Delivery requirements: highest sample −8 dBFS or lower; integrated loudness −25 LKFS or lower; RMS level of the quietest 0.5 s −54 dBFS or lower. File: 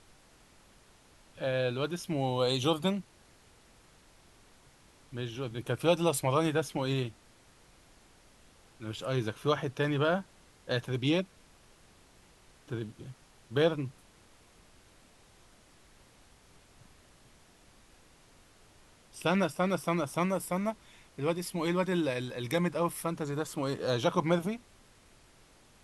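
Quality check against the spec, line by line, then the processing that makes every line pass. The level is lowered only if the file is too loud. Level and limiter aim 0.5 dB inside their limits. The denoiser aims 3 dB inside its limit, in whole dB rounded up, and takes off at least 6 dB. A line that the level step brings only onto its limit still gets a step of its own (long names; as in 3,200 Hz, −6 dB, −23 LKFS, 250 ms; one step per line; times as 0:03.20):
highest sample −12.5 dBFS: in spec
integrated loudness −31.5 LKFS: in spec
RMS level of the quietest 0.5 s −60 dBFS: in spec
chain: no processing needed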